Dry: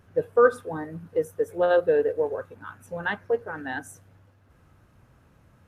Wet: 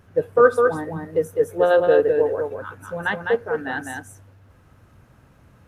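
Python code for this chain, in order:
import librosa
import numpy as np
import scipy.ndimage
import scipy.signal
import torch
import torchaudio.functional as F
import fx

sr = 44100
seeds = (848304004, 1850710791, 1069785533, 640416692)

y = x + 10.0 ** (-4.5 / 20.0) * np.pad(x, (int(205 * sr / 1000.0), 0))[:len(x)]
y = y * 10.0 ** (4.0 / 20.0)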